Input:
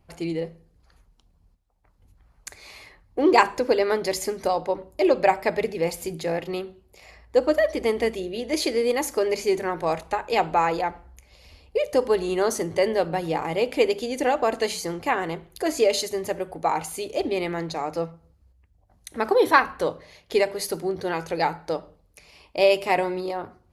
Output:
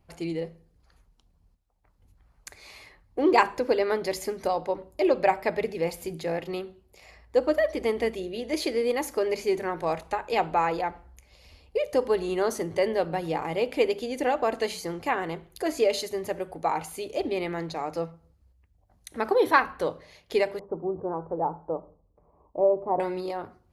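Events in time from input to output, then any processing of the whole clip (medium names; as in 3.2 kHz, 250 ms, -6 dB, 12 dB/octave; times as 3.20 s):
20.59–23.00 s: elliptic low-pass 1.1 kHz, stop band 70 dB
whole clip: dynamic bell 7.4 kHz, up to -5 dB, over -44 dBFS, Q 0.82; trim -3 dB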